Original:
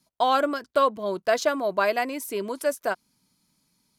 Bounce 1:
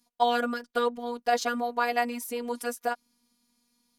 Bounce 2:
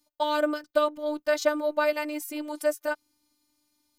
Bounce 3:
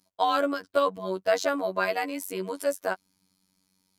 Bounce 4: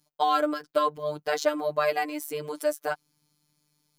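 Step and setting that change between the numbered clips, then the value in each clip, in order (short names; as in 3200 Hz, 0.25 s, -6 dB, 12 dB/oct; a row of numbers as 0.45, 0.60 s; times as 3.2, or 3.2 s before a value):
robotiser, frequency: 240, 300, 94, 150 Hz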